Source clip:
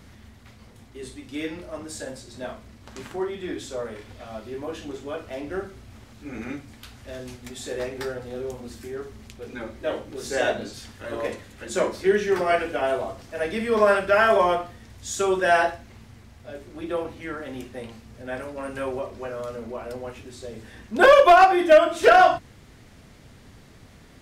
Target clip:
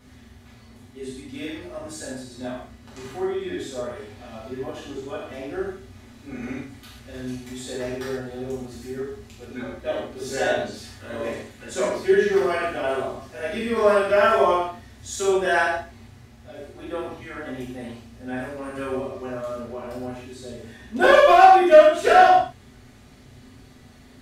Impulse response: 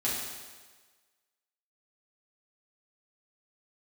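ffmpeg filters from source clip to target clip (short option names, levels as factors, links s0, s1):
-filter_complex "[1:a]atrim=start_sample=2205,atrim=end_sample=6615[s0];[0:a][s0]afir=irnorm=-1:irlink=0,volume=0.473"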